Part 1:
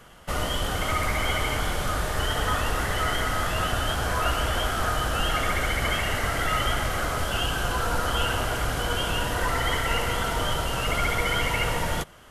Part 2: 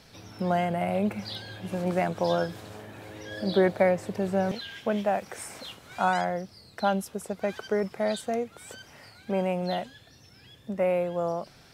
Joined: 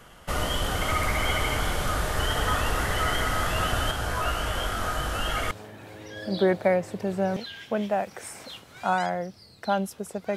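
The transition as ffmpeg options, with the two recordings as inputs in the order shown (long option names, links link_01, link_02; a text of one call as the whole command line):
ffmpeg -i cue0.wav -i cue1.wav -filter_complex "[0:a]asettb=1/sr,asplit=3[link_01][link_02][link_03];[link_01]atrim=end=3.914[link_04];[link_02]atrim=start=3.91:end=5.51,asetpts=PTS-STARTPTS,afade=type=in:duration=0.004:curve=qsin,afade=type=out:start_time=1.596:duration=0.004:curve=qsin,flanger=delay=18:depth=4.3:speed=0.52[link_05];[link_03]atrim=start=5.506[link_06];[link_04][link_05]acrossfade=duration=0.004:curve1=hsin:curve2=qsin[link_07];[link_07][link_06]acrossfade=duration=0.004:curve1=qsin:curve2=hsin,apad=whole_dur=10.36,atrim=end=10.36,atrim=end=5.512[link_08];[1:a]atrim=start=2.658:end=7.51[link_09];[link_08][link_09]acrossfade=duration=0.004:curve1=hsin:curve2=hsin" out.wav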